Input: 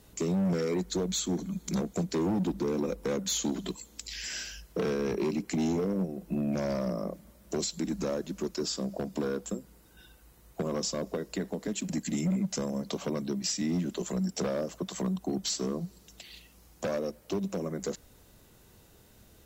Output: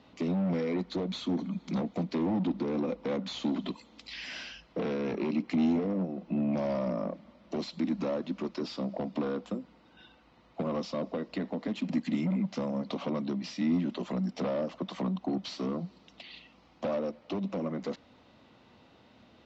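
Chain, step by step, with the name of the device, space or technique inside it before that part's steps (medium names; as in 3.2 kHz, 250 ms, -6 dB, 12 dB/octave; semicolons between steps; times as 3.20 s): overdrive pedal into a guitar cabinet (overdrive pedal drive 13 dB, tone 1.9 kHz, clips at -22.5 dBFS; cabinet simulation 80–4500 Hz, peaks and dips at 250 Hz +8 dB, 410 Hz -7 dB, 1.6 kHz -7 dB)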